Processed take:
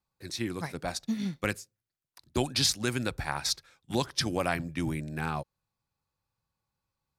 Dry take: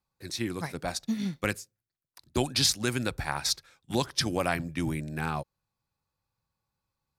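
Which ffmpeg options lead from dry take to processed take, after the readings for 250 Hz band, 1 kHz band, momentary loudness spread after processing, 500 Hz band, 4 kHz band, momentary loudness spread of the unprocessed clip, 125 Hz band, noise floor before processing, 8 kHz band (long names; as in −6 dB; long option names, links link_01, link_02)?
−1.0 dB, −1.0 dB, 10 LU, −1.0 dB, −1.5 dB, 10 LU, −1.0 dB, below −85 dBFS, −2.0 dB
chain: -af "highshelf=frequency=9500:gain=-3,volume=-1dB"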